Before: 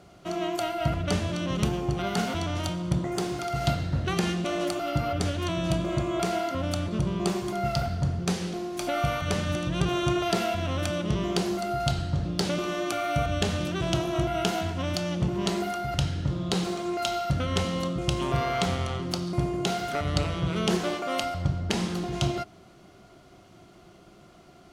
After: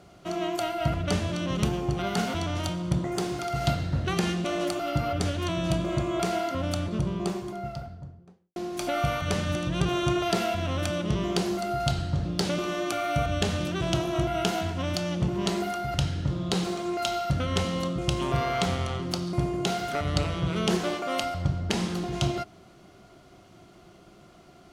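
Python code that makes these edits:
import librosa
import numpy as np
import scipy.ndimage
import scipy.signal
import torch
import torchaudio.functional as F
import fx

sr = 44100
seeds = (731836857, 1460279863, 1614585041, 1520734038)

y = fx.studio_fade_out(x, sr, start_s=6.67, length_s=1.89)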